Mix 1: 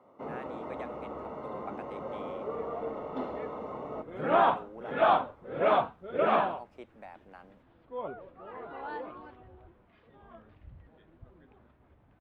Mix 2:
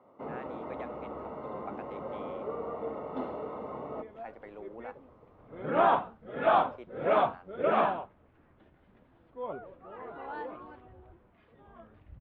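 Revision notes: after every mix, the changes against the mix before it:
second sound: entry +1.45 s
master: add high-frequency loss of the air 130 metres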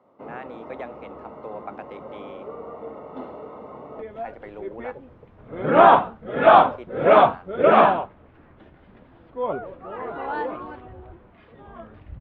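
speech +7.5 dB
second sound +11.5 dB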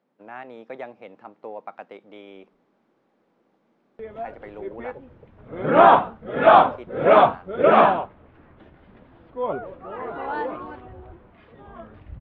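first sound: muted

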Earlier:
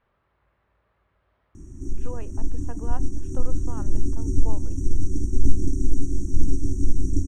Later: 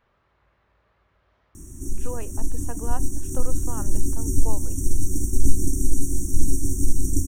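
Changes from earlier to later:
speech +3.0 dB
master: remove high-frequency loss of the air 150 metres

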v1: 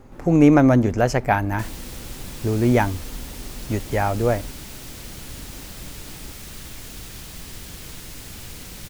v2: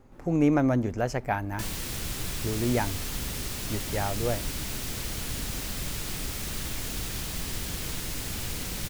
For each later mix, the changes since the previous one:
speech −9.0 dB
background +4.0 dB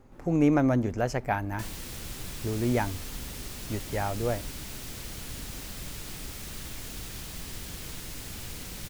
background −6.0 dB

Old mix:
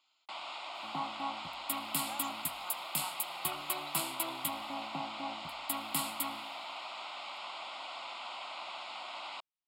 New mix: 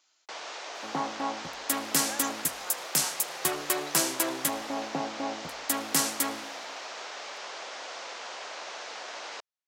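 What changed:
second sound +4.5 dB
master: remove phaser with its sweep stopped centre 1,700 Hz, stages 6

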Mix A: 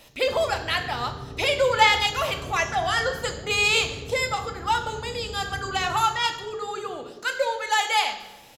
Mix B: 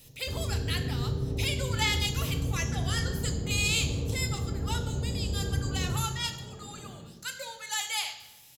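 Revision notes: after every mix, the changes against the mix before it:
speech: add first difference
master: add low-shelf EQ 410 Hz +8.5 dB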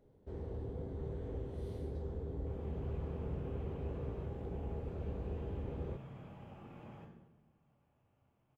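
speech: muted
first sound: send off
master: add low-shelf EQ 410 Hz −8.5 dB

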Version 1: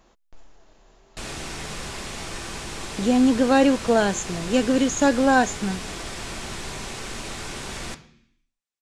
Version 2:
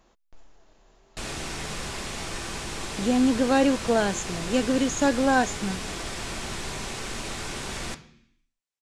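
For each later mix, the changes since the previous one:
speech −3.5 dB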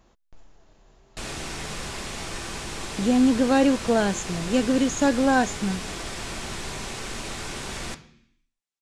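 speech: add parametric band 87 Hz +8.5 dB 2.2 octaves

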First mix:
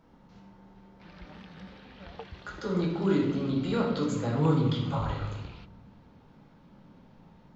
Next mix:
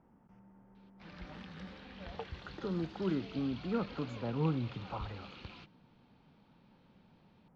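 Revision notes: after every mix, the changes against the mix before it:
speech: add moving average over 11 samples
reverb: off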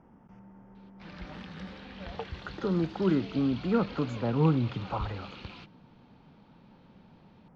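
speech +8.0 dB
background +5.0 dB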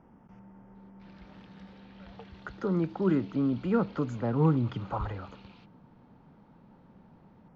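background −11.0 dB

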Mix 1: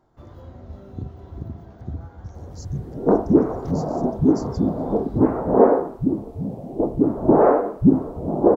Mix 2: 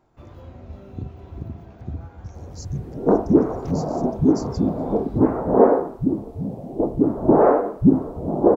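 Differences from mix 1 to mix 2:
speech +3.5 dB
first sound: add parametric band 2,500 Hz +11 dB 0.34 octaves

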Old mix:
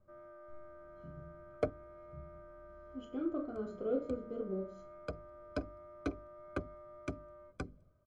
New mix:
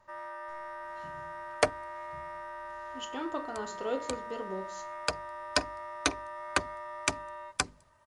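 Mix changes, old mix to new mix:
speech: send −6.5 dB
master: remove moving average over 48 samples

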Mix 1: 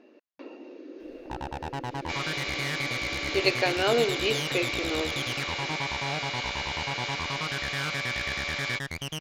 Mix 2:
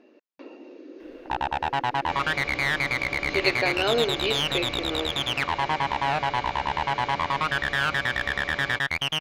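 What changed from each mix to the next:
first sound: add flat-topped bell 1,600 Hz +11 dB 2.9 octaves
second sound: add spectral tilt −4.5 dB per octave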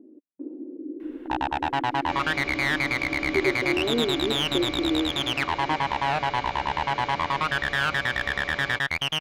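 speech: add low-pass with resonance 300 Hz, resonance Q 3.5

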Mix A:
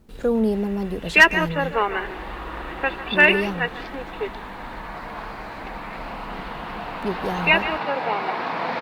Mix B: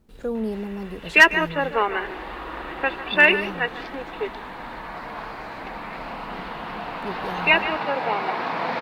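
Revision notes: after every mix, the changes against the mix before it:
speech −6.5 dB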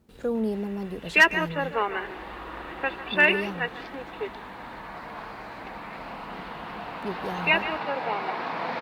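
background −4.5 dB
master: add high-pass filter 59 Hz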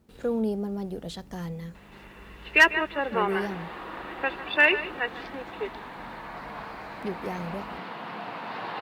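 background: entry +1.40 s

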